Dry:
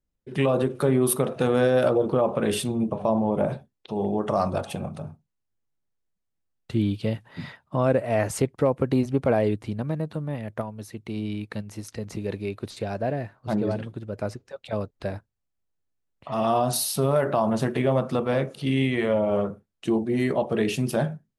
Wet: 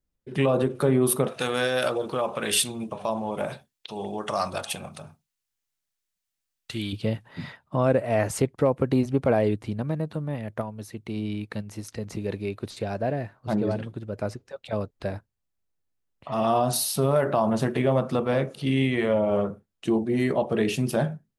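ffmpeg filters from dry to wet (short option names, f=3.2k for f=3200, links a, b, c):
-filter_complex "[0:a]asettb=1/sr,asplit=3[a][b][c];[a]atrim=end=1.284[d];[b]atrim=start=1.28:end=6.93,asetpts=PTS-STARTPTS,afade=t=in:d=0.004:c=qsin,afade=t=out:st=5.646:d=0.004:c=qsin,tiltshelf=f=1.1k:g=-9.5[e];[c]atrim=start=6.926[f];[d][e]acrossfade=d=0.004:c1=hsin:c2=qsin[g];[g][f]acrossfade=d=0.004:c1=qsin:c2=hsin"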